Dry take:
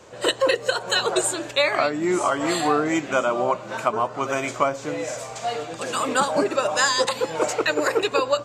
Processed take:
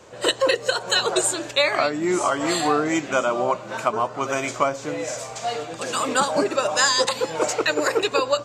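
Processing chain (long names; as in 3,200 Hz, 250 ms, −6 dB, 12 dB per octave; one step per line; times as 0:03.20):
dynamic equaliser 5,600 Hz, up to +4 dB, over −41 dBFS, Q 1.1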